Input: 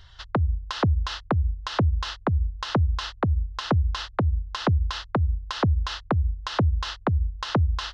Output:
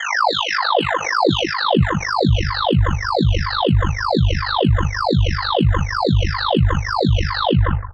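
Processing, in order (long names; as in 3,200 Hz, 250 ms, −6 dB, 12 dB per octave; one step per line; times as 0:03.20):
every frequency bin delayed by itself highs early, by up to 858 ms
graphic EQ with 10 bands 125 Hz +7 dB, 500 Hz +11 dB, 1,000 Hz +5 dB, 2,000 Hz +10 dB, 4,000 Hz +11 dB
high-pass filter sweep 870 Hz → 69 Hz, 0:00.51–0:02.51
low-shelf EQ 350 Hz +10 dB
on a send: single-tap delay 167 ms −10.5 dB
on the sum: reverb reduction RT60 1.5 s
reversed playback
downward compressor 6 to 1, threshold −22 dBFS, peak gain reduction 19 dB
reversed playback
ring modulation 25 Hz
background raised ahead of every attack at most 44 dB per second
level +9 dB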